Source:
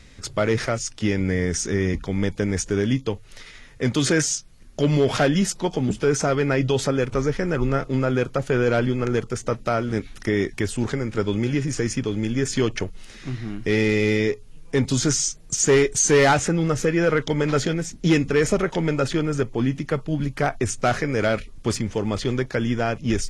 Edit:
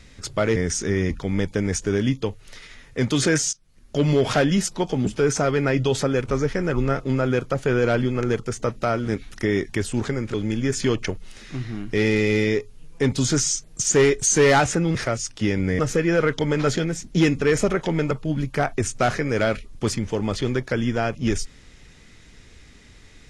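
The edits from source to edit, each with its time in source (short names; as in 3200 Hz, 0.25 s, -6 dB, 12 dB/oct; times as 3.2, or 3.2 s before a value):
0.56–1.4 move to 16.68
4.37–4.87 fade in, from -19 dB
11.18–12.07 cut
19–19.94 cut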